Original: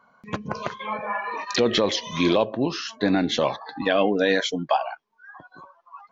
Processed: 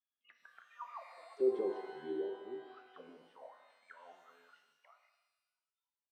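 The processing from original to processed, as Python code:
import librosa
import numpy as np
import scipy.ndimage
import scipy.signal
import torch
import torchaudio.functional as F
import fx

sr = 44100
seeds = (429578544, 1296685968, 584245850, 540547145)

y = fx.doppler_pass(x, sr, speed_mps=42, closest_m=11.0, pass_at_s=1.61)
y = fx.auto_wah(y, sr, base_hz=390.0, top_hz=3400.0, q=21.0, full_db=-30.5, direction='down')
y = fx.rev_shimmer(y, sr, seeds[0], rt60_s=1.1, semitones=12, shimmer_db=-8, drr_db=5.5)
y = y * librosa.db_to_amplitude(1.0)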